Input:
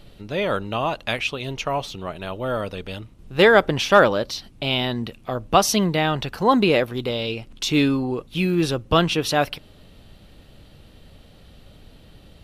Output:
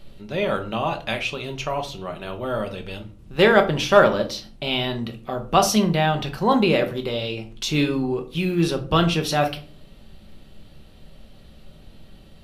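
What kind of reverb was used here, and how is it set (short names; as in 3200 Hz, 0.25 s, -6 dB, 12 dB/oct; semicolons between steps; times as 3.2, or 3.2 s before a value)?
shoebox room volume 260 m³, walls furnished, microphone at 1.1 m; gain -2.5 dB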